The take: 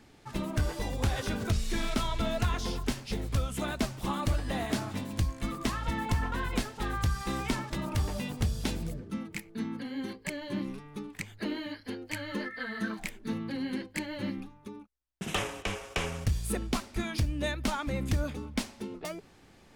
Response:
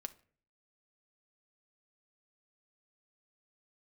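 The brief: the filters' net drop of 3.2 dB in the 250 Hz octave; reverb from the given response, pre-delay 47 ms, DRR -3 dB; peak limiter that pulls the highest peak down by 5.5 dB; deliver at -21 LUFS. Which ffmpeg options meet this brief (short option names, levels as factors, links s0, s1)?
-filter_complex "[0:a]equalizer=f=250:t=o:g=-4,alimiter=level_in=1.12:limit=0.0631:level=0:latency=1,volume=0.891,asplit=2[s0][s1];[1:a]atrim=start_sample=2205,adelay=47[s2];[s1][s2]afir=irnorm=-1:irlink=0,volume=2.11[s3];[s0][s3]amix=inputs=2:normalize=0,volume=3.76"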